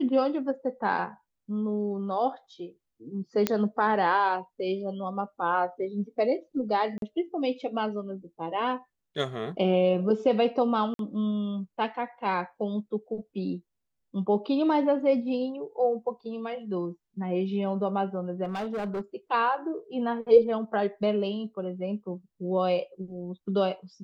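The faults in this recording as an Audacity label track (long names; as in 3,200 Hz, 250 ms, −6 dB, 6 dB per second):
3.470000	3.470000	click −9 dBFS
6.980000	7.020000	drop-out 42 ms
10.940000	10.990000	drop-out 52 ms
18.440000	19.010000	clipping −28 dBFS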